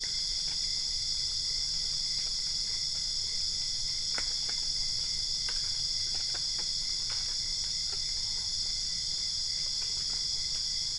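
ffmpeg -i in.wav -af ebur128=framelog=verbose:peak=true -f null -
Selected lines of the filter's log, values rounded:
Integrated loudness:
  I:         -29.5 LUFS
  Threshold: -39.5 LUFS
Loudness range:
  LRA:         0.5 LU
  Threshold: -49.6 LUFS
  LRA low:   -29.9 LUFS
  LRA high:  -29.4 LUFS
True peak:
  Peak:      -17.6 dBFS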